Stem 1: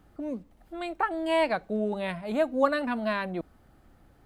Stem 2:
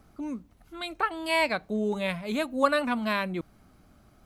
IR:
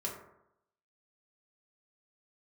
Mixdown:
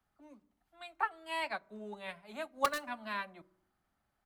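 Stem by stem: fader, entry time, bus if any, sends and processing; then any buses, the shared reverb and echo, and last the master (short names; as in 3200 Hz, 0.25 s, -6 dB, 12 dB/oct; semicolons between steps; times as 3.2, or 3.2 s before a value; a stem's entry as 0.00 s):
-3.0 dB, 0.00 s, no send, inverse Chebyshev high-pass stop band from 220 Hz, stop band 60 dB
-15.5 dB, 7.3 ms, send -8.5 dB, wrapped overs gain 14 dB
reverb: on, RT60 0.80 s, pre-delay 3 ms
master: upward expander 1.5:1, over -50 dBFS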